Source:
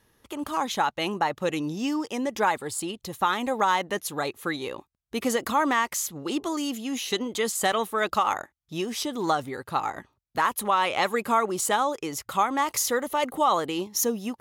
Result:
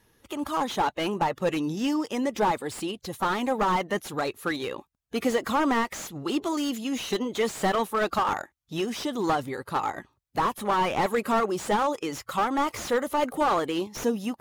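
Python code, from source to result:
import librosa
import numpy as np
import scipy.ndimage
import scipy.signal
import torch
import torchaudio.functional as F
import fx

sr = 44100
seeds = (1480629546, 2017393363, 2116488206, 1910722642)

y = fx.spec_quant(x, sr, step_db=15)
y = fx.slew_limit(y, sr, full_power_hz=78.0)
y = y * 10.0 ** (1.5 / 20.0)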